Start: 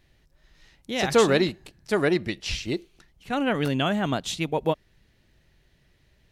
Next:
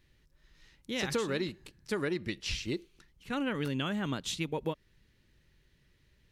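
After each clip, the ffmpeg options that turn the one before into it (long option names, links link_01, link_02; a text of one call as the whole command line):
ffmpeg -i in.wav -af "equalizer=frequency=700:width_type=o:width=0.37:gain=-12,acompressor=threshold=-24dB:ratio=6,volume=-4.5dB" out.wav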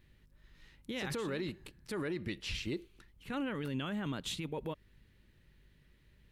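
ffmpeg -i in.wav -af "equalizer=frequency=5800:width=1.4:gain=-7,alimiter=level_in=6dB:limit=-24dB:level=0:latency=1:release=18,volume=-6dB,aeval=exprs='val(0)+0.000355*(sin(2*PI*50*n/s)+sin(2*PI*2*50*n/s)/2+sin(2*PI*3*50*n/s)/3+sin(2*PI*4*50*n/s)/4+sin(2*PI*5*50*n/s)/5)':channel_layout=same,volume=1dB" out.wav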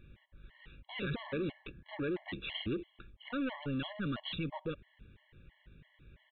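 ffmpeg -i in.wav -af "aresample=8000,asoftclip=type=tanh:threshold=-39.5dB,aresample=44100,afftfilt=real='re*gt(sin(2*PI*3*pts/sr)*(1-2*mod(floor(b*sr/1024/560),2)),0)':imag='im*gt(sin(2*PI*3*pts/sr)*(1-2*mod(floor(b*sr/1024/560),2)),0)':win_size=1024:overlap=0.75,volume=8.5dB" out.wav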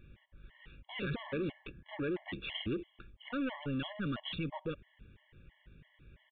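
ffmpeg -i in.wav -af "aresample=8000,aresample=44100" out.wav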